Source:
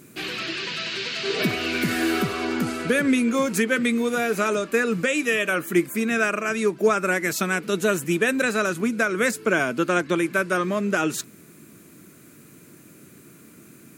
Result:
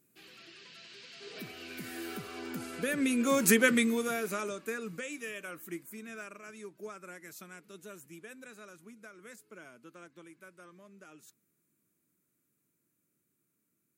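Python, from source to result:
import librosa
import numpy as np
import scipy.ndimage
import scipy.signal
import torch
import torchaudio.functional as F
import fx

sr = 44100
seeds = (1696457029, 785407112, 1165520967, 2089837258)

y = fx.doppler_pass(x, sr, speed_mps=8, closest_m=1.9, pass_at_s=3.57)
y = fx.high_shelf(y, sr, hz=8300.0, db=10.5)
y = y * 10.0 ** (-2.0 / 20.0)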